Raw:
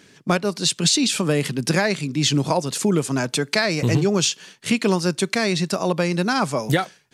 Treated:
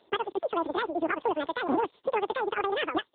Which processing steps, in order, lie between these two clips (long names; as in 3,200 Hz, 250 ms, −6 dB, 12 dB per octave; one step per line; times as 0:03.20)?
notch filter 970 Hz, Q 18
change of speed 2.27×
level −6.5 dB
AMR narrowband 6.7 kbit/s 8,000 Hz